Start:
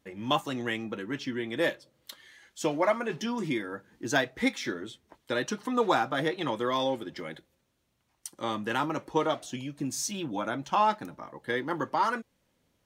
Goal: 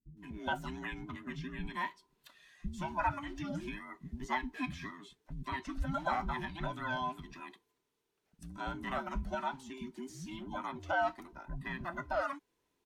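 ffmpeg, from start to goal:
ffmpeg -i in.wav -filter_complex "[0:a]afftfilt=real='real(if(between(b,1,1008),(2*floor((b-1)/24)+1)*24-b,b),0)':imag='imag(if(between(b,1,1008),(2*floor((b-1)/24)+1)*24-b,b),0)*if(between(b,1,1008),-1,1)':win_size=2048:overlap=0.75,acrossover=split=230[link_01][link_02];[link_02]adelay=170[link_03];[link_01][link_03]amix=inputs=2:normalize=0,acrossover=split=2600[link_04][link_05];[link_05]acompressor=threshold=-47dB:ratio=4:attack=1:release=60[link_06];[link_04][link_06]amix=inputs=2:normalize=0,volume=-7dB" out.wav

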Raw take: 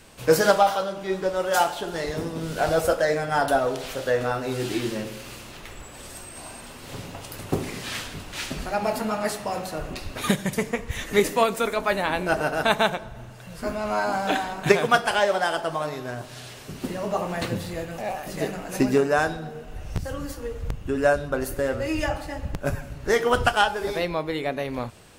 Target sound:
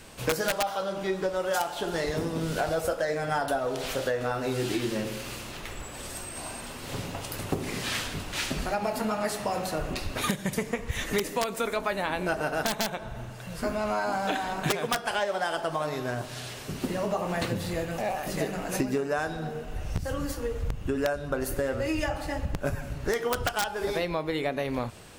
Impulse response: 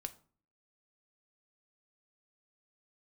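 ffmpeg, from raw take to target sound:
-af "aeval=exprs='(mod(2.66*val(0)+1,2)-1)/2.66':channel_layout=same,acompressor=threshold=-27dB:ratio=6,volume=2dB"

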